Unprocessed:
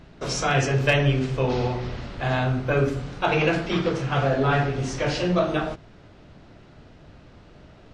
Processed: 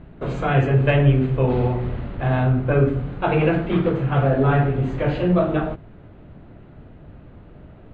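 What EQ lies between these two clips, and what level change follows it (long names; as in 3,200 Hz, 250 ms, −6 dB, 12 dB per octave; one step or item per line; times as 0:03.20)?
moving average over 8 samples
high-frequency loss of the air 76 metres
low-shelf EQ 480 Hz +6.5 dB
0.0 dB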